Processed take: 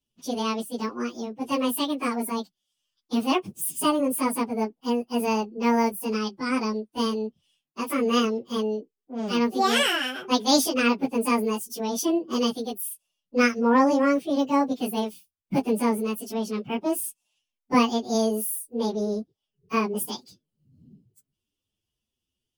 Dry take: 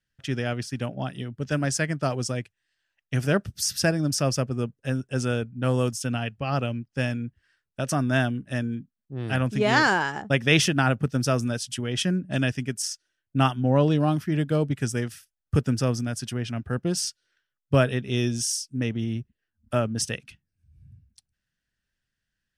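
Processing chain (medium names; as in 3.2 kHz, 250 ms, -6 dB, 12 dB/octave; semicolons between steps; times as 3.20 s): frequency-domain pitch shifter +10.5 st; trim +2.5 dB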